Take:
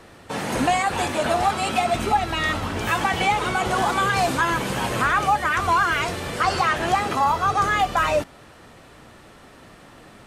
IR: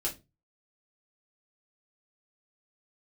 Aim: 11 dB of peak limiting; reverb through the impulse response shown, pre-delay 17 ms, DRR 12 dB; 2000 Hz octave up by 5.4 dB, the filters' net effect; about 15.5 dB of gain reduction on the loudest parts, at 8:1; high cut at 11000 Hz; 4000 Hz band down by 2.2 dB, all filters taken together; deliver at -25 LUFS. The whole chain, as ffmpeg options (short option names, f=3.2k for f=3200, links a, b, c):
-filter_complex "[0:a]lowpass=11k,equalizer=f=2k:t=o:g=8.5,equalizer=f=4k:t=o:g=-7.5,acompressor=threshold=-30dB:ratio=8,alimiter=level_in=6.5dB:limit=-24dB:level=0:latency=1,volume=-6.5dB,asplit=2[a][b];[1:a]atrim=start_sample=2205,adelay=17[c];[b][c]afir=irnorm=-1:irlink=0,volume=-15.5dB[d];[a][d]amix=inputs=2:normalize=0,volume=13.5dB"